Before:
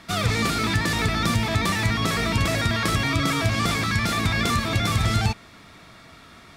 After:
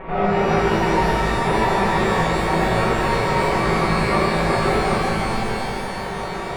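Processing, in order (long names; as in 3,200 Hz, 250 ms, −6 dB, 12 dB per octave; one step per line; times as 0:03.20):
lower of the sound and its delayed copy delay 5.3 ms
Butterworth low-pass 2,500 Hz 36 dB per octave
low-shelf EQ 150 Hz +11 dB
compressor whose output falls as the input rises −30 dBFS, ratio −1
flat-topped bell 610 Hz +12 dB
reverb with rising layers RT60 3.1 s, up +12 semitones, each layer −8 dB, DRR −7 dB
level −1.5 dB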